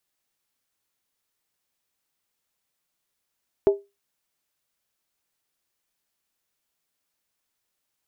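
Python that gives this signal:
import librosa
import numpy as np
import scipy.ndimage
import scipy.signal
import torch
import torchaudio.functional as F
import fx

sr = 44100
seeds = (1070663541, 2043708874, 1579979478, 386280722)

y = fx.strike_skin(sr, length_s=0.63, level_db=-10.0, hz=400.0, decay_s=0.23, tilt_db=11.0, modes=5)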